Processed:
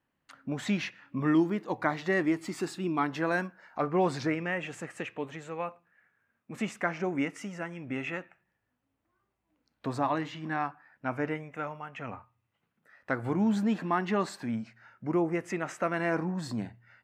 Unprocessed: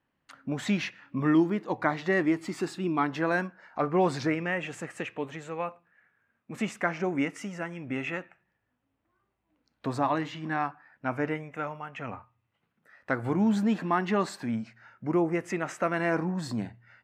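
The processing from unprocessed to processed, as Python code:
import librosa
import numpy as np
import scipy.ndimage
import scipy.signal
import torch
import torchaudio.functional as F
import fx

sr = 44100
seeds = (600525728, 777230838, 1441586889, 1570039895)

y = fx.high_shelf(x, sr, hz=6500.0, db=5.5, at=(1.27, 3.84))
y = y * 10.0 ** (-2.0 / 20.0)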